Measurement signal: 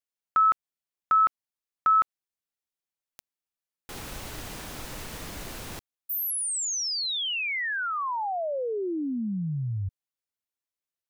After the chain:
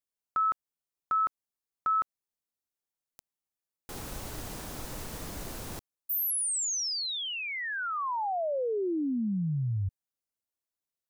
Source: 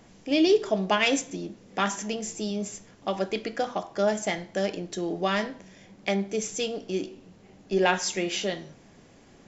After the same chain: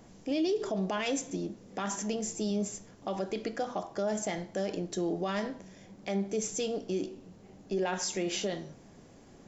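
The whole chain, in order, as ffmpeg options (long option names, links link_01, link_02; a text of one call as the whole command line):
ffmpeg -i in.wav -af "equalizer=frequency=2500:width_type=o:width=1.9:gain=-6,alimiter=limit=-23dB:level=0:latency=1:release=67" out.wav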